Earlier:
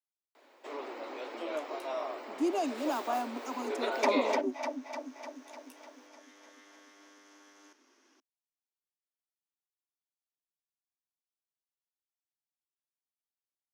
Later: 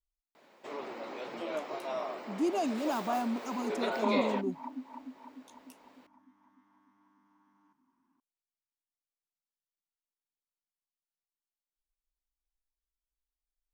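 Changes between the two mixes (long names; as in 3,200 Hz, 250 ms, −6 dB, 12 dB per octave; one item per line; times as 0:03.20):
second sound: add pair of resonant band-passes 500 Hz, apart 1.9 octaves
master: remove Butterworth high-pass 250 Hz 72 dB per octave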